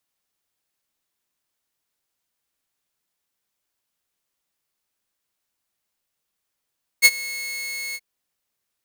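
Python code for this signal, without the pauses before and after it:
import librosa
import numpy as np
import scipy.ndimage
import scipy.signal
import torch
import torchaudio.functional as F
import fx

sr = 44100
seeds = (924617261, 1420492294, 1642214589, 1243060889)

y = fx.adsr_tone(sr, wave='saw', hz=2180.0, attack_ms=34.0, decay_ms=43.0, sustain_db=-21.0, held_s=0.93, release_ms=46.0, level_db=-4.5)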